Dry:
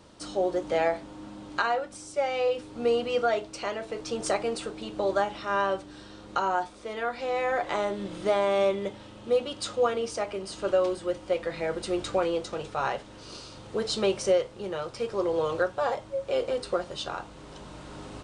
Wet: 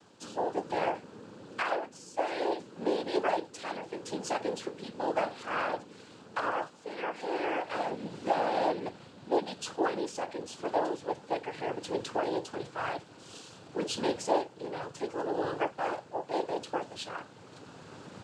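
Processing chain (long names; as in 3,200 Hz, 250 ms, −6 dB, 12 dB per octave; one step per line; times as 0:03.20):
cochlear-implant simulation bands 8
level −4.5 dB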